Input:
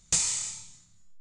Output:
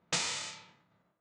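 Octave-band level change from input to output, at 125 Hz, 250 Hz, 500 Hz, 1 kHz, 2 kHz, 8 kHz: −3.5 dB, 0.0 dB, can't be measured, +5.5 dB, +4.0 dB, −11.5 dB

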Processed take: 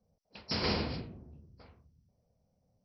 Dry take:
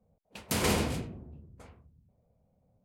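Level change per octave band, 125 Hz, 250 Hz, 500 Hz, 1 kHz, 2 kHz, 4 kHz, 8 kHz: −4.5 dB, −4.5 dB, −4.5 dB, −4.5 dB, −4.5 dB, +0.5 dB, below −20 dB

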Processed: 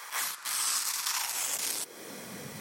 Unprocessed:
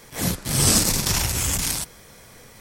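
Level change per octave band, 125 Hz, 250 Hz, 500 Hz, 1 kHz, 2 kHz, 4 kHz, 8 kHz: below −25 dB, −21.0 dB, −14.5 dB, −5.5 dB, −6.0 dB, −8.5 dB, −9.0 dB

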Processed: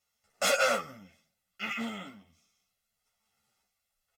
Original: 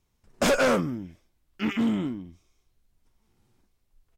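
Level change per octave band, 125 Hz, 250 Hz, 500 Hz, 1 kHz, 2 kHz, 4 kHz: −17.5, −15.5, −6.5, −2.0, −1.5, 0.0 decibels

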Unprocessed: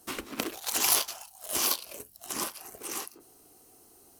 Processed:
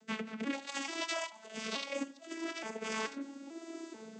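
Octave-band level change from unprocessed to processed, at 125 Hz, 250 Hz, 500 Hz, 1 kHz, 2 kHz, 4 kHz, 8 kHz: −1.5, +3.5, +0.5, −4.5, −0.5, −8.0, −16.5 decibels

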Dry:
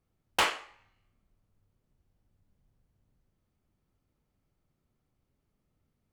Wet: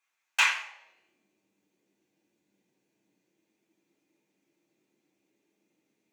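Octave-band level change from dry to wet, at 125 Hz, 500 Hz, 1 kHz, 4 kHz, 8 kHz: below −20 dB, −15.5 dB, −2.0 dB, +2.0 dB, +3.5 dB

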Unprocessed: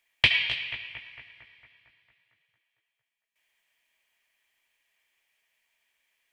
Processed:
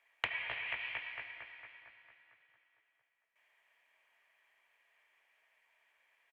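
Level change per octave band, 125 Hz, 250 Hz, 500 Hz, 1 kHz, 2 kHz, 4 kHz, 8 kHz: −19.5 dB, below −15 dB, −6.0 dB, −2.5 dB, −10.5 dB, −18.5 dB, below −15 dB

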